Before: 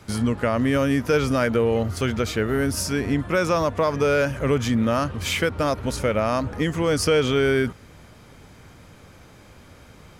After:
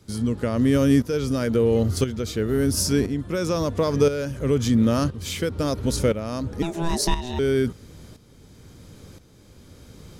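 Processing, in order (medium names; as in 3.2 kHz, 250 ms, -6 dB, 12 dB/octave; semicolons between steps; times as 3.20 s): 6.62–7.39 s: ring modulator 500 Hz; high-order bell 1.3 kHz -9 dB 2.5 oct; tremolo saw up 0.98 Hz, depth 70%; trim +5 dB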